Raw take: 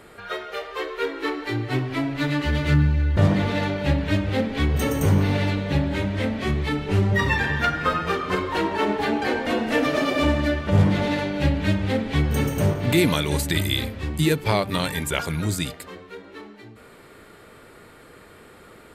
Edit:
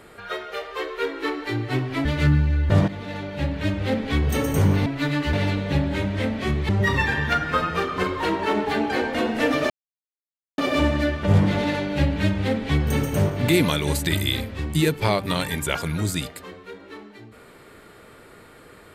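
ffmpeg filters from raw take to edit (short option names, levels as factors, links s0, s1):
-filter_complex "[0:a]asplit=7[s0][s1][s2][s3][s4][s5][s6];[s0]atrim=end=2.052[s7];[s1]atrim=start=2.518:end=3.35,asetpts=PTS-STARTPTS,afade=t=out:st=0.828:d=0.004:c=hsin:silence=0.223872[s8];[s2]atrim=start=3.35:end=5.332,asetpts=PTS-STARTPTS,afade=t=in:d=1.12:silence=0.223872[s9];[s3]atrim=start=2.048:end=2.522[s10];[s4]atrim=start=5.328:end=6.692[s11];[s5]atrim=start=7.008:end=10.02,asetpts=PTS-STARTPTS,afade=t=out:st=3.008:d=0.004:c=hsin,apad=pad_dur=0.88[s12];[s6]atrim=start=10.02,asetpts=PTS-STARTPTS,afade=t=in:d=0.004:c=hsin[s13];[s8][s9]concat=n=2:v=0:a=1[s14];[s7][s14]acrossfade=d=0.004:c1=hsin:c2=hsin[s15];[s15][s10]acrossfade=d=0.004:c1=hsin:c2=hsin[s16];[s16][s11]acrossfade=d=0.004:c1=hsin:c2=hsin[s17];[s12][s13]concat=n=2:v=0:a=1[s18];[s17][s18]acrossfade=d=0.004:c1=hsin:c2=hsin"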